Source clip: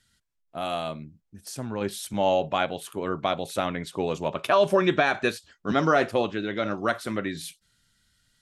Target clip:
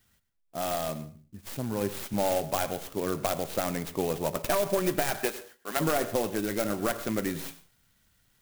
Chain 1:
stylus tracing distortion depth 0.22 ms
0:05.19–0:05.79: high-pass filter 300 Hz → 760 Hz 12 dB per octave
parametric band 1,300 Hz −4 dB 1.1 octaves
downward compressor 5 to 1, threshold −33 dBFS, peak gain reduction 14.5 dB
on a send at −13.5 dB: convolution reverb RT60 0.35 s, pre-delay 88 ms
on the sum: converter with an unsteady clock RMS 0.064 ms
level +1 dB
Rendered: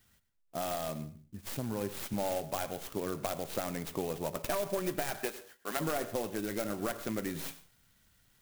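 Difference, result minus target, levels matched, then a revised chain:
downward compressor: peak gain reduction +7 dB
stylus tracing distortion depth 0.22 ms
0:05.19–0:05.79: high-pass filter 300 Hz → 760 Hz 12 dB per octave
parametric band 1,300 Hz −4 dB 1.1 octaves
downward compressor 5 to 1, threshold −24.5 dBFS, peak gain reduction 8 dB
on a send at −13.5 dB: convolution reverb RT60 0.35 s, pre-delay 88 ms
on the sum: converter with an unsteady clock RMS 0.064 ms
level +1 dB

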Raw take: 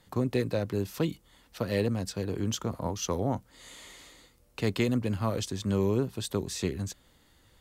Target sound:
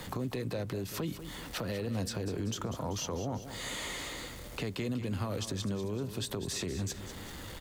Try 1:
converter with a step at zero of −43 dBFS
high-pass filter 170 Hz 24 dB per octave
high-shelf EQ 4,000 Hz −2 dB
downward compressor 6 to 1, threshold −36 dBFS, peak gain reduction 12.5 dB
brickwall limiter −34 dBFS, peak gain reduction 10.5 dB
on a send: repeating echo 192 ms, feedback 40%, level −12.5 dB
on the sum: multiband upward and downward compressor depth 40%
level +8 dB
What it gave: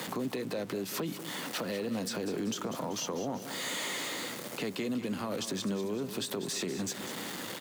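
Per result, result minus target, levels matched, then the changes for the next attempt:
125 Hz band −8.5 dB; converter with a step at zero: distortion +12 dB
remove: high-pass filter 170 Hz 24 dB per octave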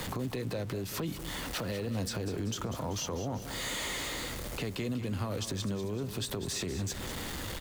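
converter with a step at zero: distortion +12 dB
change: converter with a step at zero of −55 dBFS

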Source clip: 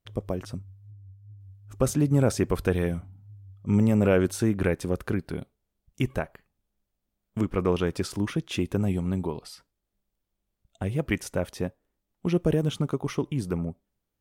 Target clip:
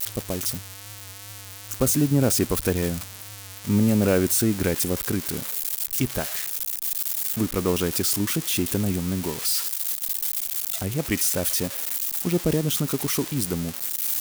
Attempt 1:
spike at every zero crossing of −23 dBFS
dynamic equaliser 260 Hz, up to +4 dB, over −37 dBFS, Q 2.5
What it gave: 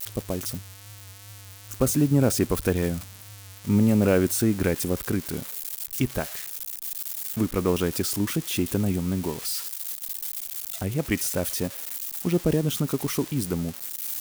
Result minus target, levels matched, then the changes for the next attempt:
spike at every zero crossing: distortion −6 dB
change: spike at every zero crossing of −17 dBFS

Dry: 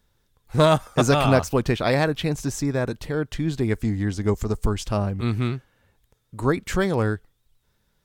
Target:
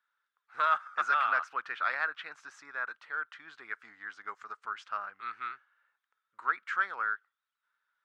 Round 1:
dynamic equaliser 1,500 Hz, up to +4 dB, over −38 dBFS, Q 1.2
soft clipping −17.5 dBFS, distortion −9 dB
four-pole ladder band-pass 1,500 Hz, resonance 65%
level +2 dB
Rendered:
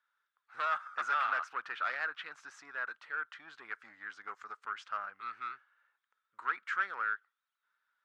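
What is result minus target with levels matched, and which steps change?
soft clipping: distortion +11 dB
change: soft clipping −7.5 dBFS, distortion −20 dB

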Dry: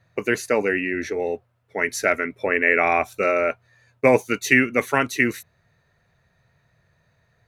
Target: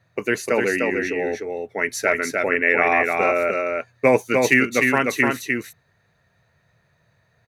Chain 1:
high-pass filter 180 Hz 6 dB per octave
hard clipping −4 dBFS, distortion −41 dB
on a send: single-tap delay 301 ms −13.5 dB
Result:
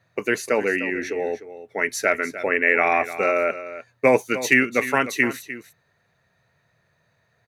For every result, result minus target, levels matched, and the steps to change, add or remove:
echo-to-direct −10 dB; 125 Hz band −4.0 dB
change: single-tap delay 301 ms −3.5 dB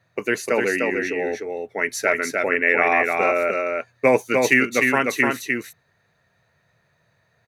125 Hz band −3.0 dB
change: high-pass filter 70 Hz 6 dB per octave

